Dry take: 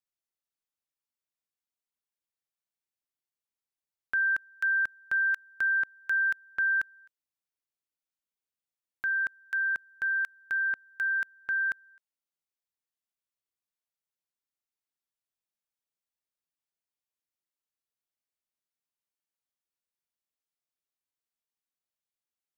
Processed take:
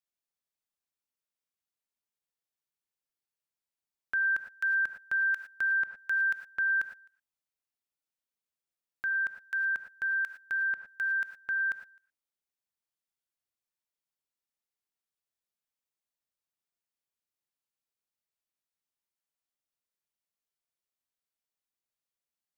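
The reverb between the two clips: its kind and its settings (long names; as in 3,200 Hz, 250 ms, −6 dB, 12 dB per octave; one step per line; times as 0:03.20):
reverb whose tail is shaped and stops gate 130 ms rising, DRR 8 dB
level −2 dB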